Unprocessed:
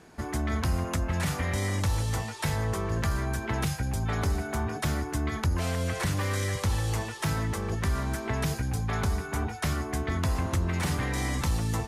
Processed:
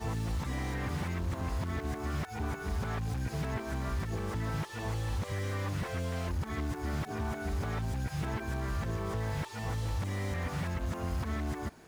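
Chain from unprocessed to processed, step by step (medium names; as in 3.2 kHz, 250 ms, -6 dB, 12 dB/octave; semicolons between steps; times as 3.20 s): reverse the whole clip; compression 6:1, threshold -28 dBFS, peak gain reduction 6 dB; short-mantissa float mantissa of 2-bit; slew-rate limiter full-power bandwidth 27 Hz; trim -2 dB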